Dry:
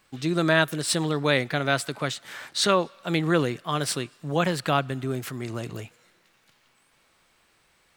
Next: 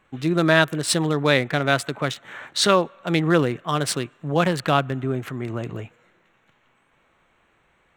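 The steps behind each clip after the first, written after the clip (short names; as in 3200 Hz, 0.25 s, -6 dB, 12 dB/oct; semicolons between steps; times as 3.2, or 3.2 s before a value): Wiener smoothing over 9 samples; gain +4 dB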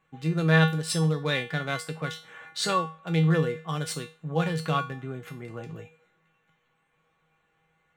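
resonator 160 Hz, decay 0.33 s, harmonics odd, mix 90%; gain +5.5 dB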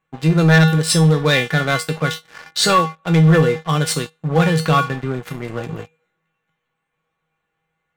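sample leveller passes 3; gain +1.5 dB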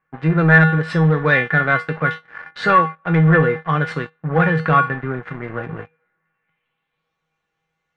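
low-pass sweep 1700 Hz -> 5700 Hz, 6.29–7.2; gain -2 dB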